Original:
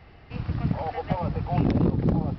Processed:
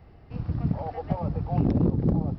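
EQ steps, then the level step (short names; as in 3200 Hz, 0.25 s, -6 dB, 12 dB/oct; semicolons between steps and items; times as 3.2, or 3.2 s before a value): bell 2700 Hz -11.5 dB 2.7 oct; 0.0 dB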